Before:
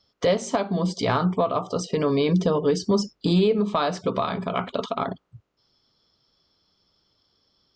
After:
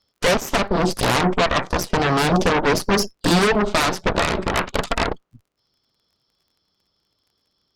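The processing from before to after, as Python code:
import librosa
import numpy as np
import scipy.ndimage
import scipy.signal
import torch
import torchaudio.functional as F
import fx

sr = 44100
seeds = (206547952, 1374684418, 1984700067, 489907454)

y = fx.dmg_crackle(x, sr, seeds[0], per_s=37.0, level_db=-49.0)
y = fx.cheby_harmonics(y, sr, harmonics=(7, 8), levels_db=(-27, -6), full_scale_db=-10.5)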